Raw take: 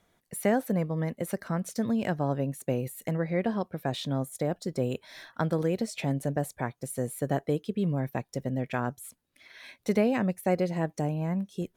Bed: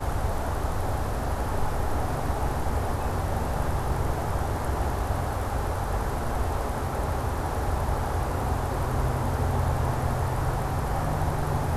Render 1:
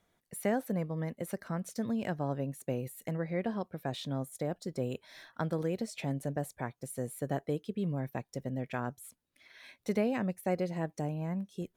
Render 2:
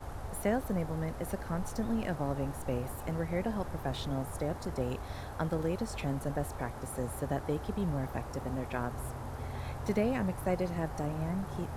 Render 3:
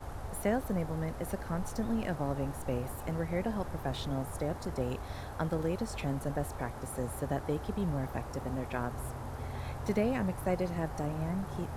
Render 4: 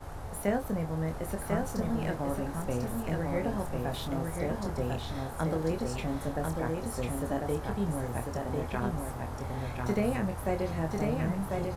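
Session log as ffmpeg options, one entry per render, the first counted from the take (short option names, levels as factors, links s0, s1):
-af "volume=0.531"
-filter_complex "[1:a]volume=0.2[s0];[0:a][s0]amix=inputs=2:normalize=0"
-af anull
-filter_complex "[0:a]asplit=2[s0][s1];[s1]adelay=25,volume=0.501[s2];[s0][s2]amix=inputs=2:normalize=0,aecho=1:1:1046:0.668"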